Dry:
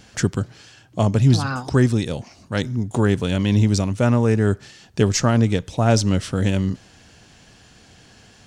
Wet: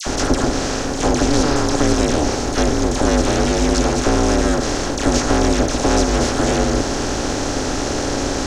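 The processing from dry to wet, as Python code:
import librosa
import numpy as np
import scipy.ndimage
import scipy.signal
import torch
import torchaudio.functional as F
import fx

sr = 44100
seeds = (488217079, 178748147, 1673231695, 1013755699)

y = fx.bin_compress(x, sr, power=0.2)
y = fx.dispersion(y, sr, late='lows', ms=69.0, hz=1400.0)
y = y * np.sin(2.0 * np.pi * 150.0 * np.arange(len(y)) / sr)
y = y * librosa.db_to_amplitude(-2.0)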